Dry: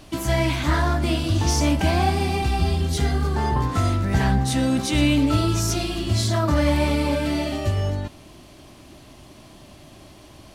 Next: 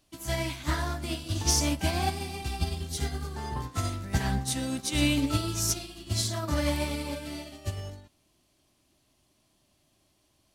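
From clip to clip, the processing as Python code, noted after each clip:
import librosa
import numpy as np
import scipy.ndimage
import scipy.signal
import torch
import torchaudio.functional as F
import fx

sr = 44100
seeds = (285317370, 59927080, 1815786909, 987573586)

y = fx.high_shelf(x, sr, hz=3800.0, db=11.0)
y = fx.upward_expand(y, sr, threshold_db=-29.0, expansion=2.5)
y = y * 10.0 ** (-5.0 / 20.0)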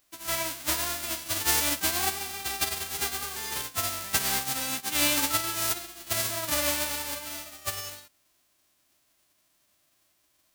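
y = fx.envelope_flatten(x, sr, power=0.1)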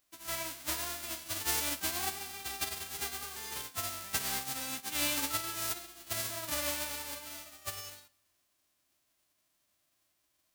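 y = fx.rev_double_slope(x, sr, seeds[0], early_s=0.44, late_s=1.9, knee_db=-16, drr_db=18.0)
y = y * 10.0 ** (-7.5 / 20.0)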